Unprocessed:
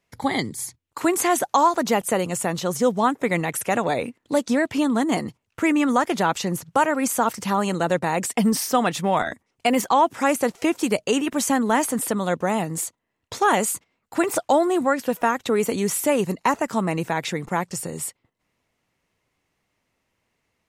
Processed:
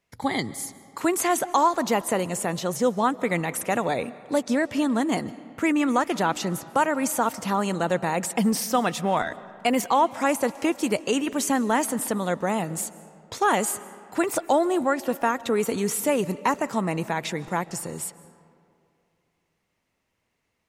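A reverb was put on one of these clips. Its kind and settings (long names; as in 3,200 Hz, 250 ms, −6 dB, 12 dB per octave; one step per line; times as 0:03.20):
comb and all-pass reverb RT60 2.5 s, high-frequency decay 0.55×, pre-delay 105 ms, DRR 17.5 dB
level −2.5 dB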